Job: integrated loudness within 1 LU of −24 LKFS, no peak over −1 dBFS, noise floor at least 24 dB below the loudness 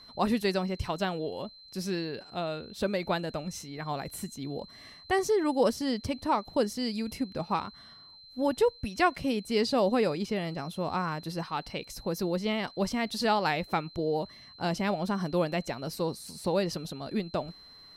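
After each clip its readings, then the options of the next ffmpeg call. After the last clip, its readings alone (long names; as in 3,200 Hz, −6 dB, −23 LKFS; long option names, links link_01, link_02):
interfering tone 4,100 Hz; level of the tone −50 dBFS; integrated loudness −31.0 LKFS; sample peak −11.5 dBFS; target loudness −24.0 LKFS
→ -af "bandreject=frequency=4100:width=30"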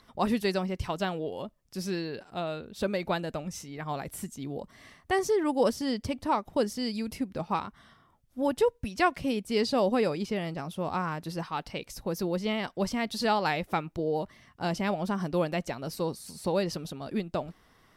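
interfering tone none found; integrated loudness −31.0 LKFS; sample peak −11.5 dBFS; target loudness −24.0 LKFS
→ -af "volume=7dB"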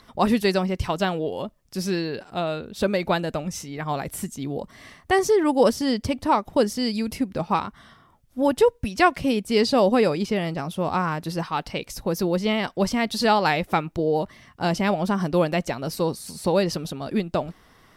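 integrated loudness −24.0 LKFS; sample peak −4.5 dBFS; background noise floor −57 dBFS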